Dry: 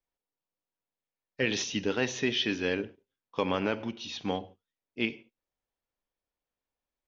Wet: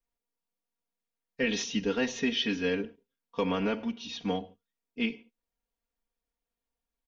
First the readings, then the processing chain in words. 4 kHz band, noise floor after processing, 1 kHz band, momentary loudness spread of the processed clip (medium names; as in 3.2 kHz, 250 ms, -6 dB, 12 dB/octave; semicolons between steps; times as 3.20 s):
-1.0 dB, under -85 dBFS, -1.5 dB, 12 LU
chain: bass shelf 200 Hz +6 dB; comb 4.3 ms, depth 89%; trim -4 dB